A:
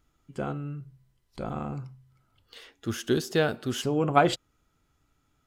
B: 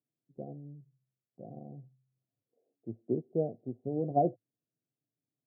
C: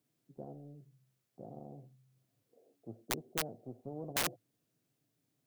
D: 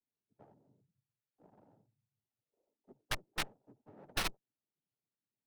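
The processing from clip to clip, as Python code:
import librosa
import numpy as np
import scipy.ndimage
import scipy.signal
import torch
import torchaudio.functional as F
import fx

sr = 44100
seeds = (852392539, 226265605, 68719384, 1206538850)

y1 = scipy.signal.sosfilt(scipy.signal.cheby1(5, 1.0, [110.0, 720.0], 'bandpass', fs=sr, output='sos'), x)
y1 = fx.upward_expand(y1, sr, threshold_db=-47.0, expansion=1.5)
y1 = y1 * 10.0 ** (-3.5 / 20.0)
y2 = (np.mod(10.0 ** (21.5 / 20.0) * y1 + 1.0, 2.0) - 1.0) / 10.0 ** (21.5 / 20.0)
y2 = fx.spectral_comp(y2, sr, ratio=2.0)
y2 = y2 * 10.0 ** (5.0 / 20.0)
y3 = fx.cheby_harmonics(y2, sr, harmonics=(3, 5, 7), levels_db=(-12, -31, -26), full_scale_db=-16.5)
y3 = fx.noise_vocoder(y3, sr, seeds[0], bands=12)
y3 = fx.running_max(y3, sr, window=5)
y3 = y3 * 10.0 ** (10.5 / 20.0)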